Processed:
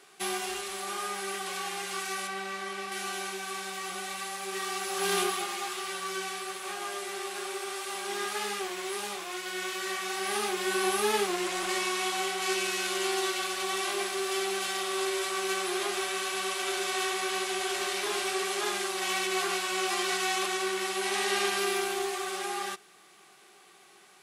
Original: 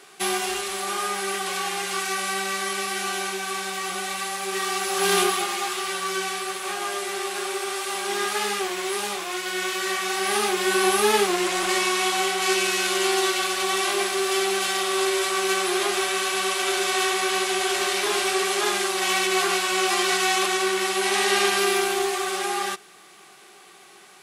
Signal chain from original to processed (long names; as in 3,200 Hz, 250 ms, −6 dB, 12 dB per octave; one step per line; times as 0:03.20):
0:02.27–0:02.92: high-shelf EQ 4,900 Hz −11.5 dB
level −7.5 dB